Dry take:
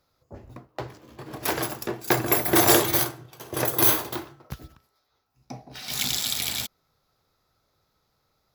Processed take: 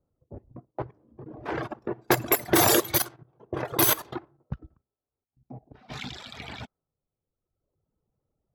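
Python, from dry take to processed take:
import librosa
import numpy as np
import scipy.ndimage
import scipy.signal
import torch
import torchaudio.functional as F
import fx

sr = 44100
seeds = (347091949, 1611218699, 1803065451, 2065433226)

y = fx.level_steps(x, sr, step_db=11)
y = fx.dereverb_blind(y, sr, rt60_s=1.5)
y = fx.env_lowpass(y, sr, base_hz=440.0, full_db=-23.5)
y = y * librosa.db_to_amplitude(5.0)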